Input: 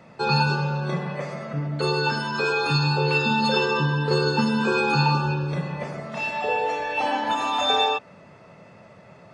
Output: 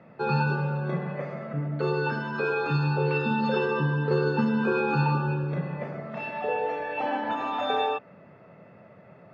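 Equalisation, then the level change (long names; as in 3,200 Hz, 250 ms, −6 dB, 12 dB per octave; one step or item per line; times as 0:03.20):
high-pass filter 100 Hz
low-pass filter 1,900 Hz 12 dB per octave
parametric band 970 Hz −5 dB 0.53 octaves
−1.5 dB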